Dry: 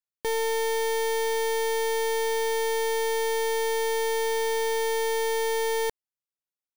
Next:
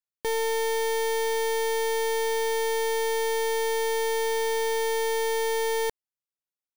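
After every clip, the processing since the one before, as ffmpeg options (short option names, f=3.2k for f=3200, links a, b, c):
-af anull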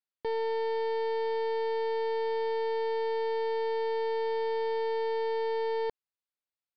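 -filter_complex "[0:a]lowshelf=f=340:g=-4.5,acrossover=split=1100[a][b];[b]alimiter=level_in=8dB:limit=-24dB:level=0:latency=1,volume=-8dB[c];[a][c]amix=inputs=2:normalize=0,aresample=11025,aresample=44100,volume=-1.5dB"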